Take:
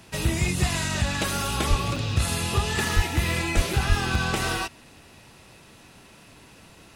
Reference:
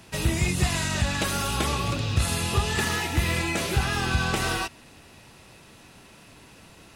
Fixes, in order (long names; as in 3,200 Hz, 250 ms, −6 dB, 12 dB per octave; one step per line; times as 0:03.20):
high-pass at the plosives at 0:01.69/0:02.95/0:03.55/0:03.88
repair the gap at 0:01.96/0:03.73/0:04.15, 2.6 ms